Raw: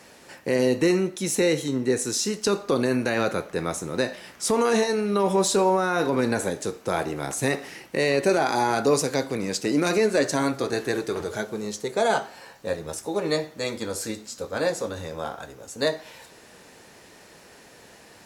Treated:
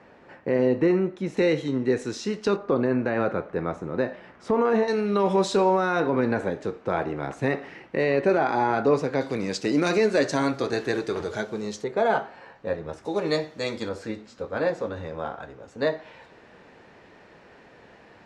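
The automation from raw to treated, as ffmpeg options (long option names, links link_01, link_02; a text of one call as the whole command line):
ffmpeg -i in.wav -af "asetnsamples=nb_out_samples=441:pad=0,asendcmd='1.37 lowpass f 3000;2.56 lowpass f 1600;4.88 lowpass f 4000;6 lowpass f 2200;9.21 lowpass f 5200;11.84 lowpass f 2200;13.05 lowpass f 5300;13.89 lowpass f 2400',lowpass=1700" out.wav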